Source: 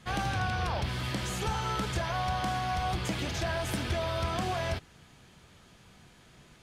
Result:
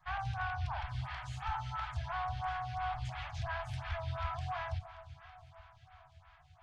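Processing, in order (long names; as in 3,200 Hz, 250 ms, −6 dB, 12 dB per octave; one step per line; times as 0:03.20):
inverse Chebyshev band-stop filter 190–500 Hz, stop band 40 dB
head-to-tape spacing loss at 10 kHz 26 dB
delay that swaps between a low-pass and a high-pass 289 ms, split 1,300 Hz, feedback 76%, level −13 dB
phaser with staggered stages 2.9 Hz
level +1 dB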